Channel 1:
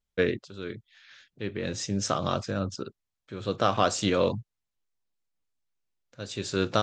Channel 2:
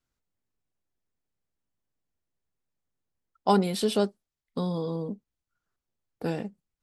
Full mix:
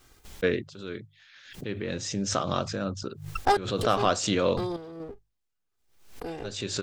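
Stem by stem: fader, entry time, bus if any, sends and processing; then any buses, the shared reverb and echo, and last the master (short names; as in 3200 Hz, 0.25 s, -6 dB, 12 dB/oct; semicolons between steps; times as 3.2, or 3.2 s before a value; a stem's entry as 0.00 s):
-0.5 dB, 0.25 s, no send, dry
+1.0 dB, 0.00 s, no send, minimum comb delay 2.5 ms; random-step tremolo 4.2 Hz, depth 100%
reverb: off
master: notches 50/100/150 Hz; backwards sustainer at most 85 dB/s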